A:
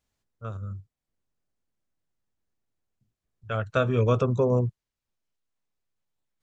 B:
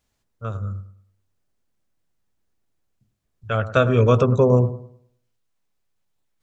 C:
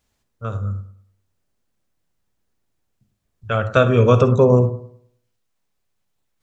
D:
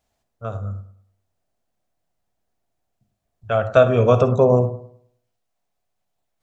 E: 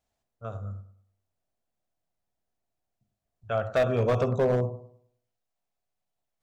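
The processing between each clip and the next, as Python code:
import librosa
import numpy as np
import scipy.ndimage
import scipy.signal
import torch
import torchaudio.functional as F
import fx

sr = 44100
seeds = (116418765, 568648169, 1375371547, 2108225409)

y1 = fx.echo_bbd(x, sr, ms=103, stages=1024, feedback_pct=33, wet_db=-13.0)
y1 = y1 * 10.0 ** (6.5 / 20.0)
y2 = fx.rev_gated(y1, sr, seeds[0], gate_ms=80, shape='rising', drr_db=11.0)
y2 = y2 * 10.0 ** (2.5 / 20.0)
y3 = fx.peak_eq(y2, sr, hz=690.0, db=12.5, octaves=0.48)
y3 = y3 * 10.0 ** (-4.0 / 20.0)
y4 = np.clip(y3, -10.0 ** (-10.0 / 20.0), 10.0 ** (-10.0 / 20.0))
y4 = y4 * 10.0 ** (-8.0 / 20.0)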